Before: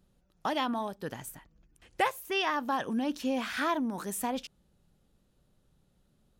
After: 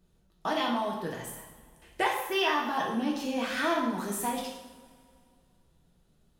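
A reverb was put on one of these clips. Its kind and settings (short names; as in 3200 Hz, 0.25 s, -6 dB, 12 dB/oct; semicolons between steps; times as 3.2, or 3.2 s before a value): two-slope reverb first 0.77 s, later 2.4 s, from -17 dB, DRR -2.5 dB; gain -2 dB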